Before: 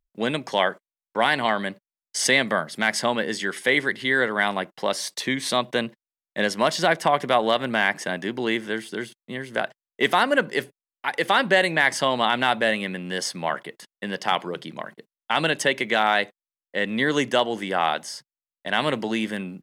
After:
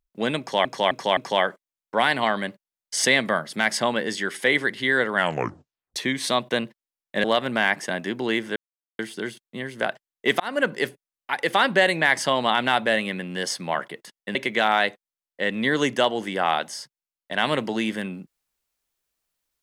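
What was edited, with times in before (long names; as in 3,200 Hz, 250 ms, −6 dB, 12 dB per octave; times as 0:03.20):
0:00.39–0:00.65: repeat, 4 plays
0:04.37: tape stop 0.81 s
0:06.46–0:07.42: remove
0:08.74: splice in silence 0.43 s
0:10.15–0:10.52: fade in equal-power
0:14.10–0:15.70: remove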